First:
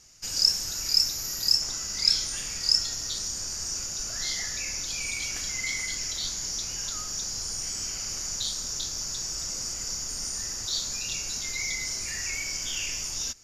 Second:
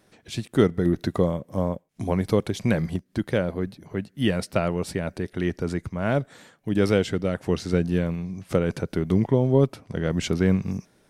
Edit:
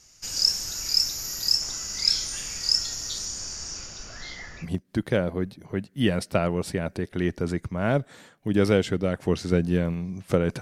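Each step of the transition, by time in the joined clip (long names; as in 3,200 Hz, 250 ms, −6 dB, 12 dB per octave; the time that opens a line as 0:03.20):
first
0:03.25–0:04.67: low-pass filter 10,000 Hz → 1,600 Hz
0:04.64: continue with second from 0:02.85, crossfade 0.06 s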